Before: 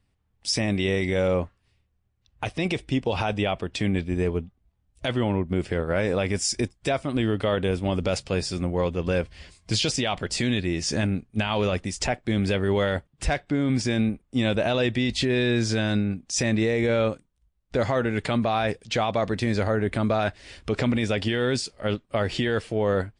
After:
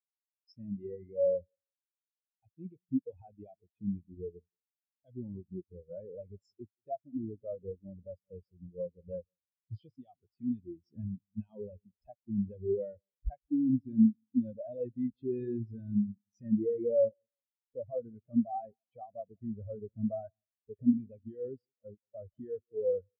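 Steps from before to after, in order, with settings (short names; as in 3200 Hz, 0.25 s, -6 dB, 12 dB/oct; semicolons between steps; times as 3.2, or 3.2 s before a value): feedback echo 0.176 s, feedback 53%, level -14 dB; spectral expander 4:1; gain -2.5 dB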